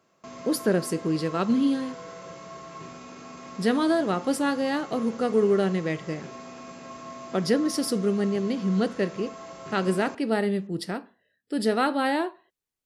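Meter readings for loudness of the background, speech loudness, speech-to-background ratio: −42.0 LKFS, −26.0 LKFS, 16.0 dB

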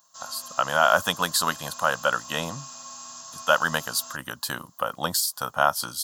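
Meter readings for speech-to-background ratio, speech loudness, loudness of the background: 14.5 dB, −25.0 LKFS, −39.5 LKFS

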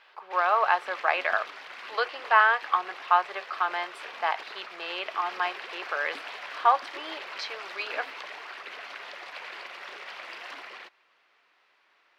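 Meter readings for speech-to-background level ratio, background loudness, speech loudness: 13.0 dB, −40.5 LKFS, −27.5 LKFS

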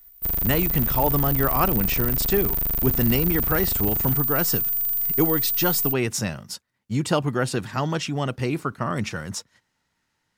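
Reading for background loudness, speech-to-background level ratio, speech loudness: −21.5 LKFS, −4.0 dB, −25.5 LKFS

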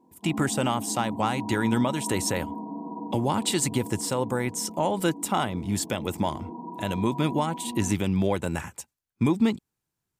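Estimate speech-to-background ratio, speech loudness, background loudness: 10.0 dB, −27.0 LKFS, −37.0 LKFS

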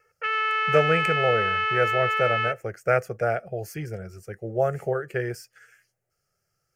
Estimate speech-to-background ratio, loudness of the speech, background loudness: −3.0 dB, −27.0 LKFS, −24.0 LKFS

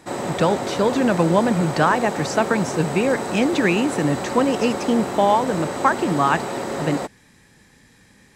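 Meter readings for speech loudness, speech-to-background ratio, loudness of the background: −21.0 LKFS, 6.0 dB, −27.0 LKFS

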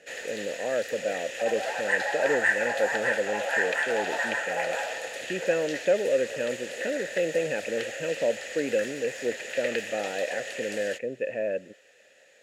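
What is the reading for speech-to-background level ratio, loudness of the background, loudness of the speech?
0.5 dB, −31.0 LKFS, −30.5 LKFS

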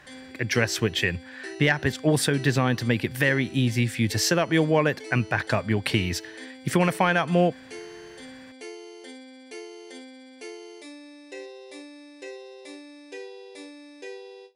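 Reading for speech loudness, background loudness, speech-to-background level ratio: −24.0 LKFS, −42.5 LKFS, 18.5 dB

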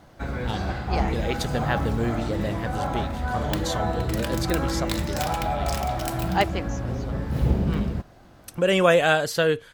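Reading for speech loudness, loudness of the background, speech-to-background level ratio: −26.5 LKFS, −27.5 LKFS, 1.0 dB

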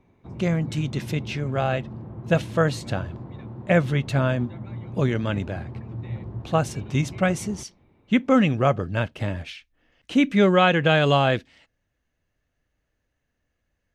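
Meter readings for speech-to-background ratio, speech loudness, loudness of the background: 14.0 dB, −23.0 LKFS, −37.0 LKFS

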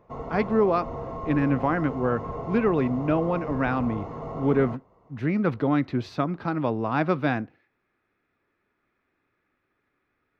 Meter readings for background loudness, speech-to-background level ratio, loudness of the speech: −35.5 LKFS, 9.5 dB, −26.0 LKFS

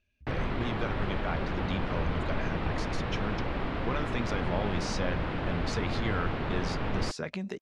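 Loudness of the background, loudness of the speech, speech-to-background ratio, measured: −33.5 LKFS, −36.5 LKFS, −3.0 dB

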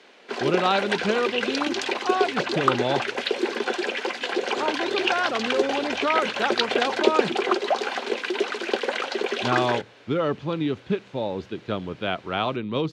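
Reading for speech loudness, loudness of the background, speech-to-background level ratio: −27.0 LKFS, −26.0 LKFS, −1.0 dB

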